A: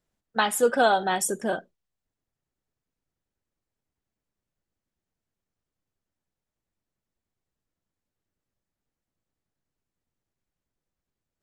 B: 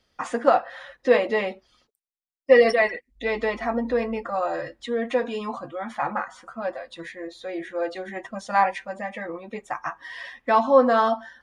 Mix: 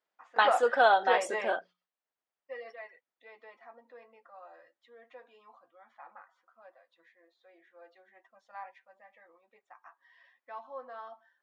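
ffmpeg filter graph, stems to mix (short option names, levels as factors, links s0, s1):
-filter_complex "[0:a]bandreject=f=60:t=h:w=6,bandreject=f=120:t=h:w=6,bandreject=f=180:t=h:w=6,volume=1.06,asplit=2[s0][s1];[1:a]volume=0.501[s2];[s1]apad=whole_len=503978[s3];[s2][s3]sidechaingate=range=0.141:threshold=0.00562:ratio=16:detection=peak[s4];[s0][s4]amix=inputs=2:normalize=0,highpass=670,lowpass=6800,aemphasis=mode=reproduction:type=75fm"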